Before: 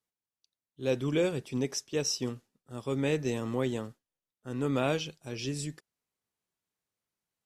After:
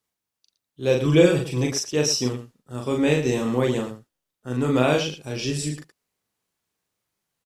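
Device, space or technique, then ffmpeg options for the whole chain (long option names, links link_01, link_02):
slapback doubling: -filter_complex "[0:a]asplit=3[link_01][link_02][link_03];[link_02]adelay=40,volume=-3dB[link_04];[link_03]adelay=114,volume=-10.5dB[link_05];[link_01][link_04][link_05]amix=inputs=3:normalize=0,asettb=1/sr,asplit=3[link_06][link_07][link_08];[link_06]atrim=end=1.054[link_09];[link_07]atrim=start=1.05:end=1.72,asetpts=PTS-STARTPTS,afade=type=in:duration=0.004:curve=qsin,afade=type=out:start_time=0.666:duration=0.004:curve=qsin,aecho=1:1:6.1:0.74,atrim=end_sample=29547[link_10];[link_08]atrim=start=1.716[link_11];[link_09][link_10]acrossfade=duration=0.004:curve1=hsin:curve2=qsin[link_12];[link_12][link_11]acrossfade=duration=0.004:curve1=qsin:curve2=hsin,volume=7dB"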